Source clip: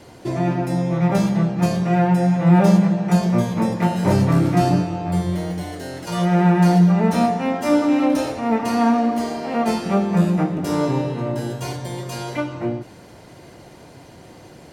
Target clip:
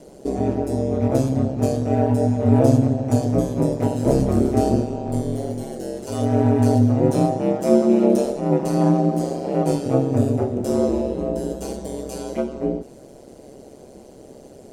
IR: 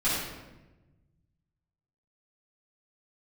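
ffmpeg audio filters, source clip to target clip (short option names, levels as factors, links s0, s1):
-af "equalizer=f=125:t=o:w=1:g=-3,equalizer=f=250:t=o:w=1:g=4,equalizer=f=500:t=o:w=1:g=10,equalizer=f=1000:t=o:w=1:g=-7,equalizer=f=2000:t=o:w=1:g=-8,equalizer=f=4000:t=o:w=1:g=-4,equalizer=f=8000:t=o:w=1:g=6,aeval=exprs='val(0)*sin(2*PI*67*n/s)':c=same,volume=0.891"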